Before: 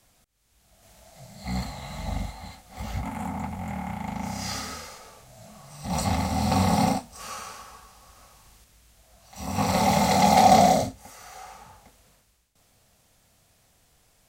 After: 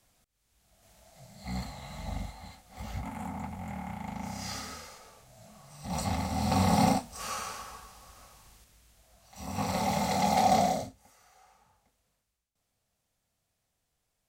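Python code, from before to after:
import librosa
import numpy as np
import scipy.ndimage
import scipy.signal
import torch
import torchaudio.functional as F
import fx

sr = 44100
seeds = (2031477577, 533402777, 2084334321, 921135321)

y = fx.gain(x, sr, db=fx.line((6.28, -6.0), (7.19, 1.0), (7.69, 1.0), (9.83, -8.0), (10.58, -8.0), (11.35, -17.5)))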